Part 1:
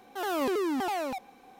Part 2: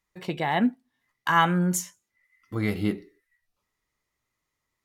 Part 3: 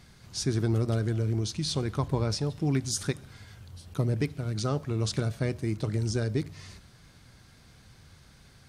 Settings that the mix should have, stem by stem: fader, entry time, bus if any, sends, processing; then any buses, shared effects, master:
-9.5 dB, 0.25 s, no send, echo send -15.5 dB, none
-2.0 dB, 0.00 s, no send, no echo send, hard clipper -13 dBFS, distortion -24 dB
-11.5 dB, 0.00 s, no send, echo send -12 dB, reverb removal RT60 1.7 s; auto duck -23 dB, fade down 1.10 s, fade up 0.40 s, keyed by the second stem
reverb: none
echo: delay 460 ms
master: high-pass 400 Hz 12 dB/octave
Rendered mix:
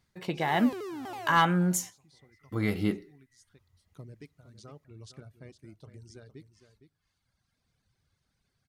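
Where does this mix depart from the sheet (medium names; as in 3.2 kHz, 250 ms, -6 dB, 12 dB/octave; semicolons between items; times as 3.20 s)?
stem 3 -11.5 dB -> -18.5 dB; master: missing high-pass 400 Hz 12 dB/octave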